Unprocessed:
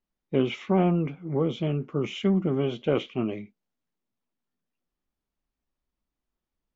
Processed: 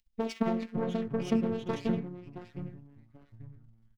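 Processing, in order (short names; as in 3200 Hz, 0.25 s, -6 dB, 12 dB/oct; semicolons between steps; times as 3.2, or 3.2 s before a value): self-modulated delay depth 0.58 ms; LPF 3500 Hz 6 dB/oct; de-hum 81.36 Hz, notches 29; limiter -22.5 dBFS, peak gain reduction 10 dB; upward compressor, threshold -36 dBFS; transient shaper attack +8 dB, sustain -4 dB; sample leveller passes 1; robotiser 225 Hz; tempo 1.7×; echoes that change speed 0.23 s, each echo -4 st, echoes 3, each echo -6 dB; three-band expander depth 100%; gain -3.5 dB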